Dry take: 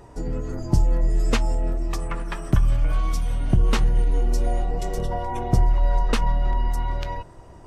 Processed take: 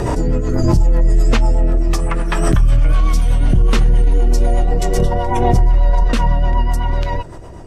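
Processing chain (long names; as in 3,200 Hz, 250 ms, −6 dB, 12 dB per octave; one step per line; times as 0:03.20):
0:01.28–0:01.88: high-shelf EQ 7,000 Hz −8.5 dB
0:06.08–0:06.93: notch comb filter 430 Hz
rotating-speaker cabinet horn 8 Hz
boost into a limiter +16.5 dB
background raised ahead of every attack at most 25 dB per second
level −5 dB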